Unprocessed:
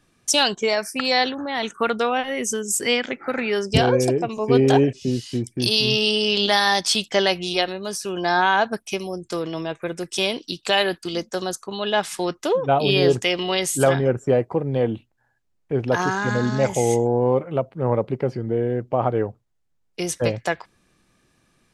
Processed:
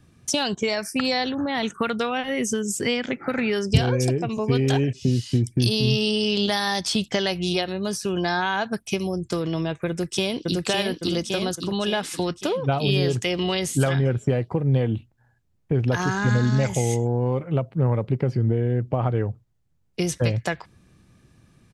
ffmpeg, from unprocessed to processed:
-filter_complex "[0:a]asplit=2[a][b];[b]afade=t=in:st=9.89:d=0.01,afade=t=out:st=10.62:d=0.01,aecho=0:1:560|1120|1680|2240|2800|3360|3920:0.944061|0.47203|0.236015|0.118008|0.0590038|0.0295019|0.014751[c];[a][c]amix=inputs=2:normalize=0,acrossover=split=1400|5700[d][e][f];[d]acompressor=threshold=-27dB:ratio=4[g];[e]acompressor=threshold=-27dB:ratio=4[h];[f]acompressor=threshold=-33dB:ratio=4[i];[g][h][i]amix=inputs=3:normalize=0,equalizer=f=96:t=o:w=2.6:g=14.5"

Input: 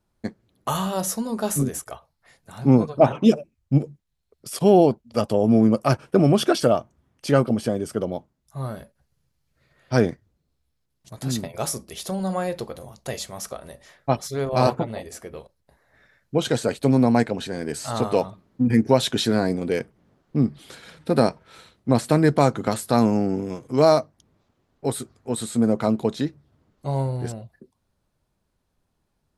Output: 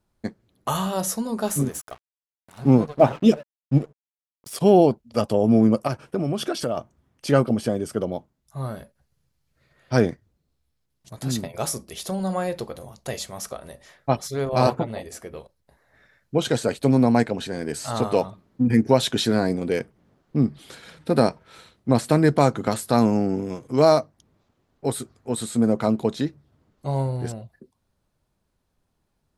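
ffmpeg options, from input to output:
-filter_complex "[0:a]asettb=1/sr,asplit=3[a][b][c];[a]atrim=end=1.484[d];[b]atrim=start=1.48:end=4.57,asetpts=PTS-STARTPTS,afade=t=in:d=0.004:c=qsin,afade=t=out:st=3.086:d=0.004:c=qsin,aeval=exprs='sgn(val(0))*max(abs(val(0))-0.00794,0)':c=same[e];[c]atrim=start=4.566[f];[d][e]acrossfade=d=0.004:c1=hsin:c2=qsin[g];[g][f]acrossfade=d=0.004:c1=qsin:c2=hsin,asettb=1/sr,asplit=3[h][i][j];[h]atrim=end=5.874[k];[i]atrim=start=5.87:end=6.77,asetpts=PTS-STARTPTS,afade=t=in:d=0.004:c=qsin,afade=t=out:st=0.896:d=0.004:c=qsin,acompressor=threshold=-27dB:ratio=2:attack=3.2:release=140:knee=1:detection=peak[l];[j]atrim=start=6.766[m];[k][l]acrossfade=d=0.004:c1=hsin:c2=qsin[n];[n][m]acrossfade=d=0.004:c1=qsin:c2=hsin"

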